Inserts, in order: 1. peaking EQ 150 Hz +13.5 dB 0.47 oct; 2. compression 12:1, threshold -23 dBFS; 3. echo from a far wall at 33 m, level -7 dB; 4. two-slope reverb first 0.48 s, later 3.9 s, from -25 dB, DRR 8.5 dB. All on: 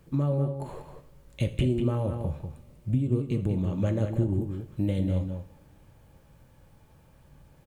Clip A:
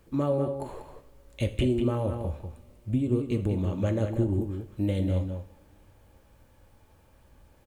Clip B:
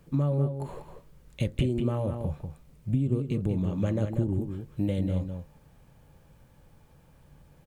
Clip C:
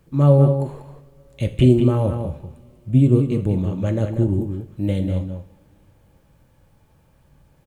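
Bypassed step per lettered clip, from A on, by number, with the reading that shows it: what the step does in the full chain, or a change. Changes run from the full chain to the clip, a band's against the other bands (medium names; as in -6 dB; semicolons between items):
1, 125 Hz band -4.5 dB; 4, echo-to-direct -4.5 dB to -7.5 dB; 2, mean gain reduction 6.0 dB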